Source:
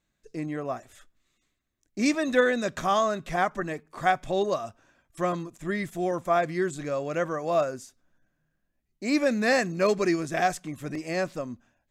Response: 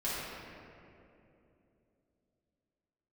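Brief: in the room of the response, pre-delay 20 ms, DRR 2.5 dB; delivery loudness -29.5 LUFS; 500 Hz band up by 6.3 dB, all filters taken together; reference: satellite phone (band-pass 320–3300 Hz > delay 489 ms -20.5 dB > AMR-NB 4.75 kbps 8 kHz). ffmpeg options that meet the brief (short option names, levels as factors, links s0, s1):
-filter_complex "[0:a]equalizer=f=500:t=o:g=8.5,asplit=2[s0][s1];[1:a]atrim=start_sample=2205,adelay=20[s2];[s1][s2]afir=irnorm=-1:irlink=0,volume=0.355[s3];[s0][s3]amix=inputs=2:normalize=0,highpass=320,lowpass=3300,aecho=1:1:489:0.0944,volume=0.447" -ar 8000 -c:a libopencore_amrnb -b:a 4750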